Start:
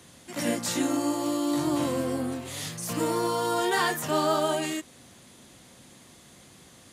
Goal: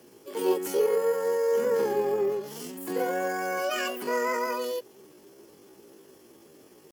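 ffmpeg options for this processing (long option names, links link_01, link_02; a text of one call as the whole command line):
ffmpeg -i in.wav -af "equalizer=frequency=240:width_type=o:width=0.97:gain=12.5,bandreject=frequency=2400:width=11,asetrate=70004,aresample=44100,atempo=0.629961,volume=-6dB" out.wav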